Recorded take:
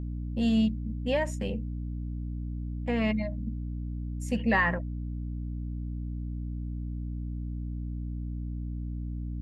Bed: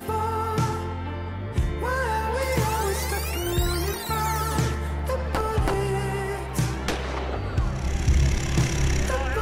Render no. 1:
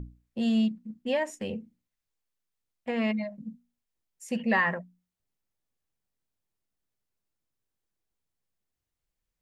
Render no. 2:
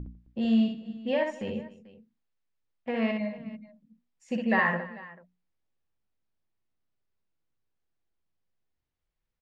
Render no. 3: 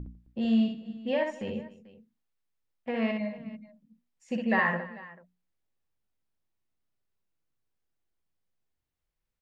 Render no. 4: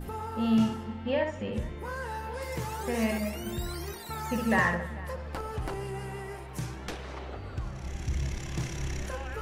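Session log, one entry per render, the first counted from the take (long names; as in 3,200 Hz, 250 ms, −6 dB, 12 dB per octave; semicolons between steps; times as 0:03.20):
mains-hum notches 60/120/180/240/300 Hz
high-frequency loss of the air 160 metres; multi-tap delay 50/62/151/263/441 ms −19.5/−4/−18.5/−20/−19.5 dB
level −1 dB
mix in bed −11 dB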